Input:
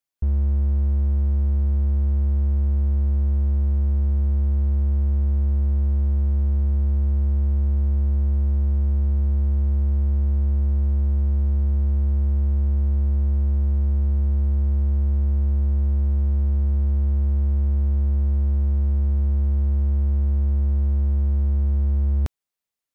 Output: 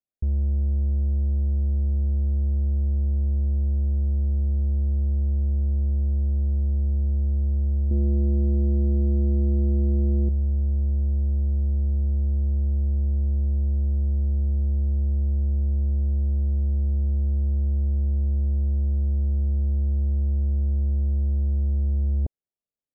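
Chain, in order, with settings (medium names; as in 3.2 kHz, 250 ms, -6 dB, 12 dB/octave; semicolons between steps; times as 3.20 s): steep low-pass 700 Hz 36 dB/octave; 7.91–10.29 s: peaking EQ 330 Hz +14 dB 1.8 oct; trim -2.5 dB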